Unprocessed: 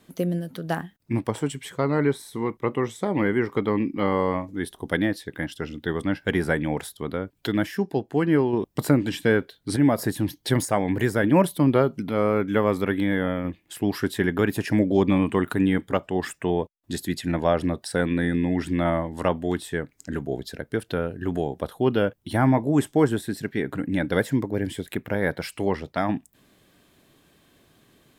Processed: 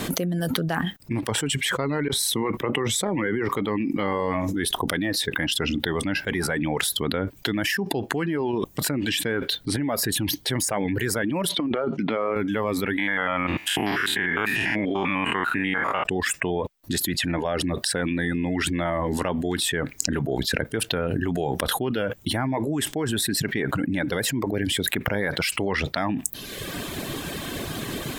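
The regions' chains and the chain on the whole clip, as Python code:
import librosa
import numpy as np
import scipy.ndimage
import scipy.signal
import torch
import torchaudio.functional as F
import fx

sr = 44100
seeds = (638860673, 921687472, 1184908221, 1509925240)

y = fx.chain(x, sr, fx.over_compress(threshold_db=-30.0, ratio=-1.0),
    fx.band_widen(depth_pct=40), at=(2.08, 3.49))
y = fx.chain(y, sr, fx.bandpass_edges(low_hz=220.0, high_hz=3500.0),
    fx.over_compress(threshold_db=-26.0, ratio=-0.5), at=(11.49, 12.36))
y = fx.chain(y, sr, fx.spec_steps(hold_ms=100),
    fx.highpass(hz=130.0, slope=6),
    fx.band_shelf(hz=1500.0, db=11.5, octaves=2.4), at=(12.98, 16.04))
y = fx.dereverb_blind(y, sr, rt60_s=0.71)
y = fx.dynamic_eq(y, sr, hz=2400.0, q=0.82, threshold_db=-44.0, ratio=4.0, max_db=5)
y = fx.env_flatten(y, sr, amount_pct=100)
y = y * librosa.db_to_amplitude(-10.5)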